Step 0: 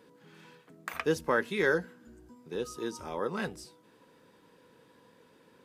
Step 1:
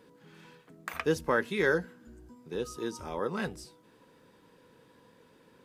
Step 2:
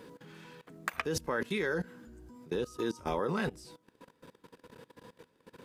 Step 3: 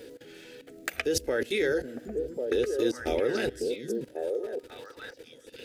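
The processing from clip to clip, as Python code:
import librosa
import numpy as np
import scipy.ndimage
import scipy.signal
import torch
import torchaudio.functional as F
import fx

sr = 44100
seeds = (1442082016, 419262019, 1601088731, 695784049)

y1 = fx.low_shelf(x, sr, hz=90.0, db=8.0)
y2 = fx.level_steps(y1, sr, step_db=20)
y2 = y2 * 10.0 ** (8.5 / 20.0)
y3 = fx.dmg_crackle(y2, sr, seeds[0], per_s=23.0, level_db=-53.0)
y3 = fx.fixed_phaser(y3, sr, hz=430.0, stages=4)
y3 = fx.echo_stepped(y3, sr, ms=547, hz=190.0, octaves=1.4, feedback_pct=70, wet_db=0)
y3 = y3 * 10.0 ** (7.5 / 20.0)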